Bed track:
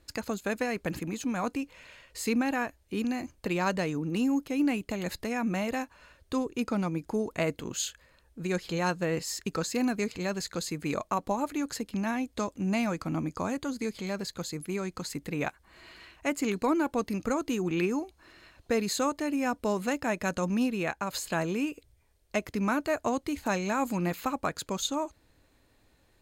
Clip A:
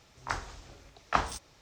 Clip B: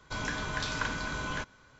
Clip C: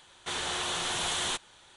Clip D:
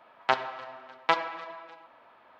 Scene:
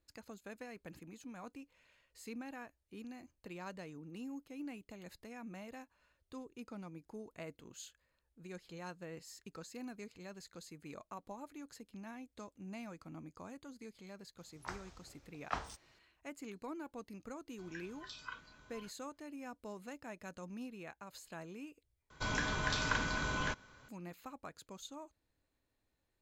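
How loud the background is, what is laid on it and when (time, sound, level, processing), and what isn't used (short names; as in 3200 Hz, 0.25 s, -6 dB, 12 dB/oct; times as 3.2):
bed track -18.5 dB
14.38 add A -11.5 dB
17.47 add B -12 dB + spectral noise reduction 15 dB
22.1 replace with B -1.5 dB
not used: C, D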